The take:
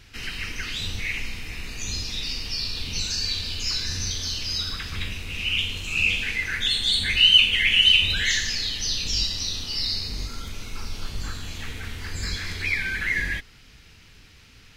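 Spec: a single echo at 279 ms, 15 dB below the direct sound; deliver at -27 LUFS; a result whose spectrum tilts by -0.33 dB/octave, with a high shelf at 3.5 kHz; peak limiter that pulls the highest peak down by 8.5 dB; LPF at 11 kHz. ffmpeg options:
-af "lowpass=11000,highshelf=f=3500:g=6.5,alimiter=limit=0.316:level=0:latency=1,aecho=1:1:279:0.178,volume=0.531"

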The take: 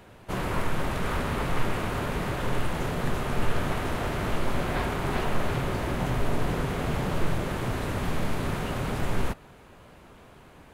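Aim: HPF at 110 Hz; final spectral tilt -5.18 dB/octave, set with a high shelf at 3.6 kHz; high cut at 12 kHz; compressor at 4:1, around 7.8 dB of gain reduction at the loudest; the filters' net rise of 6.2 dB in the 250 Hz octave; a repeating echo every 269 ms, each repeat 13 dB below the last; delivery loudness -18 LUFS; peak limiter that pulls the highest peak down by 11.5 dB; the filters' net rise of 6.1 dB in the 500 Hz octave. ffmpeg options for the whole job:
-af "highpass=110,lowpass=12000,equalizer=f=250:t=o:g=7,equalizer=f=500:t=o:g=5.5,highshelf=f=3600:g=4.5,acompressor=threshold=0.0282:ratio=4,alimiter=level_in=2.37:limit=0.0631:level=0:latency=1,volume=0.422,aecho=1:1:269|538|807:0.224|0.0493|0.0108,volume=12.6"

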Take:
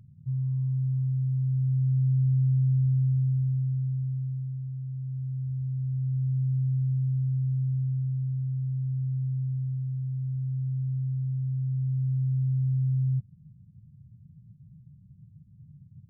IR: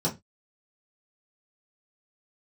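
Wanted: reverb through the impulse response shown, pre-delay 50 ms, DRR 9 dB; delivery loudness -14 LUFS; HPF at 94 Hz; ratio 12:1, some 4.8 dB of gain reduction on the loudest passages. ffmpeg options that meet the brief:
-filter_complex "[0:a]highpass=94,acompressor=threshold=0.0447:ratio=12,asplit=2[s0][s1];[1:a]atrim=start_sample=2205,adelay=50[s2];[s1][s2]afir=irnorm=-1:irlink=0,volume=0.126[s3];[s0][s3]amix=inputs=2:normalize=0,volume=6.31"

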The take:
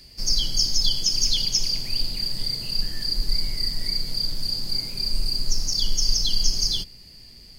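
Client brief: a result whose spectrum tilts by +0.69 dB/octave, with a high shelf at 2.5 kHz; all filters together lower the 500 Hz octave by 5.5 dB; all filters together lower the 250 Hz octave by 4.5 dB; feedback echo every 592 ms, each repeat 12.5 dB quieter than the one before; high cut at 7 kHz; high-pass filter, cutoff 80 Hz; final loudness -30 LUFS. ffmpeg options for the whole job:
-af "highpass=80,lowpass=7000,equalizer=f=250:t=o:g=-5.5,equalizer=f=500:t=o:g=-5.5,highshelf=f=2500:g=5.5,aecho=1:1:592|1184|1776:0.237|0.0569|0.0137,volume=0.316"

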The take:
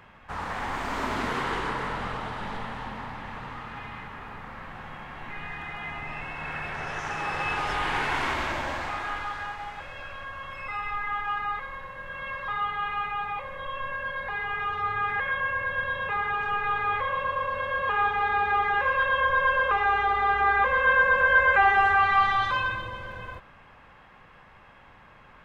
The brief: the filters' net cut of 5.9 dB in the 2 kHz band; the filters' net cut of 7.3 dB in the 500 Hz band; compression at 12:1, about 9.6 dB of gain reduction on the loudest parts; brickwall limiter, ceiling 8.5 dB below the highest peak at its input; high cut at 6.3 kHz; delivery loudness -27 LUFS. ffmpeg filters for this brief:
-af "lowpass=6300,equalizer=f=500:t=o:g=-8,equalizer=f=2000:t=o:g=-7.5,acompressor=threshold=0.0316:ratio=12,volume=3.98,alimiter=limit=0.119:level=0:latency=1"

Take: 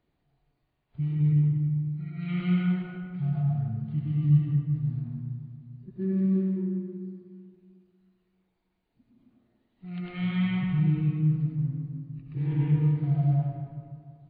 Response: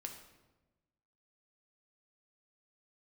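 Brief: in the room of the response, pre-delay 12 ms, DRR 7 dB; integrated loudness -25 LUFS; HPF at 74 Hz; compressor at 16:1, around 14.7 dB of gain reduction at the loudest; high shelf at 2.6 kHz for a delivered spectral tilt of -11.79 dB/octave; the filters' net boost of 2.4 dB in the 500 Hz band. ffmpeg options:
-filter_complex "[0:a]highpass=74,equalizer=f=500:t=o:g=4,highshelf=f=2600:g=-3.5,acompressor=threshold=0.0316:ratio=16,asplit=2[s0][s1];[1:a]atrim=start_sample=2205,adelay=12[s2];[s1][s2]afir=irnorm=-1:irlink=0,volume=0.631[s3];[s0][s3]amix=inputs=2:normalize=0,volume=2.82"

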